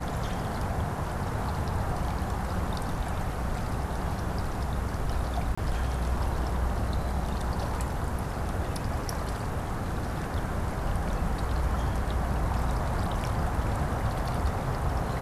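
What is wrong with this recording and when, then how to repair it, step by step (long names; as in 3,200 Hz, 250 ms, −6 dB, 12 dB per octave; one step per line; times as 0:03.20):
0:05.55–0:05.58: drop-out 25 ms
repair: repair the gap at 0:05.55, 25 ms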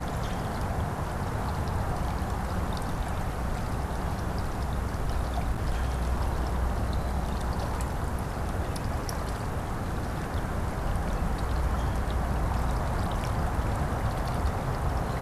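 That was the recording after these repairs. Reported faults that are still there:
none of them is left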